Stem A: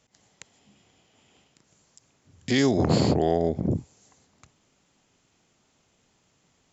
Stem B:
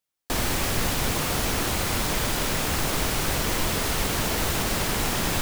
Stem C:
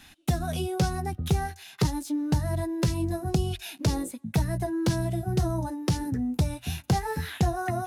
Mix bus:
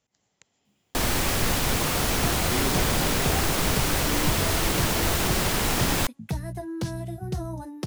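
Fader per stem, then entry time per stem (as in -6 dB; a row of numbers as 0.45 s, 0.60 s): -10.5 dB, +1.0 dB, -5.0 dB; 0.00 s, 0.65 s, 1.95 s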